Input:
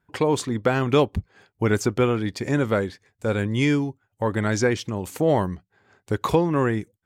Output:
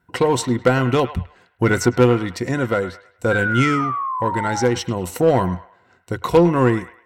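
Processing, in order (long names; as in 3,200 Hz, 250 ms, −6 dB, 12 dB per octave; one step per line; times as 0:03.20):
EQ curve with evenly spaced ripples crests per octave 2, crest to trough 9 dB
harmonic generator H 4 −20 dB, 6 −24 dB, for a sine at −6.5 dBFS
sound drawn into the spectrogram fall, 0:03.31–0:04.66, 790–1,600 Hz −27 dBFS
shaped tremolo saw down 0.63 Hz, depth 50%
in parallel at −9.5 dB: hard clipping −19 dBFS, distortion −9 dB
on the sum: delay with a band-pass on its return 105 ms, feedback 34%, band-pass 1,500 Hz, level −11 dB
level +3 dB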